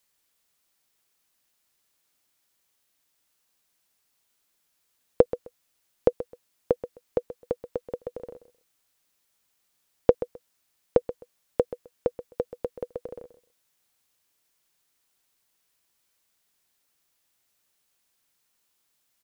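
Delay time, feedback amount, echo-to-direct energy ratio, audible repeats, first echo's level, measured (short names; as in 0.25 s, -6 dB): 0.13 s, 18%, -14.0 dB, 2, -14.0 dB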